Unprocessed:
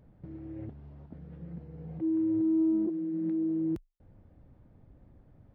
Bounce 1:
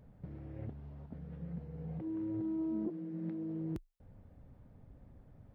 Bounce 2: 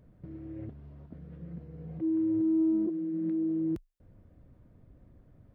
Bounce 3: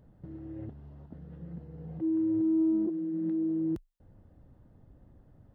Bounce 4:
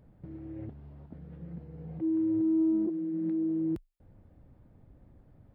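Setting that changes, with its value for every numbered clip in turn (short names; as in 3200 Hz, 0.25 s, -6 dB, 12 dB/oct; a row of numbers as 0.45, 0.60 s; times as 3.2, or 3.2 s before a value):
notch, frequency: 330, 830, 2300, 6000 Hz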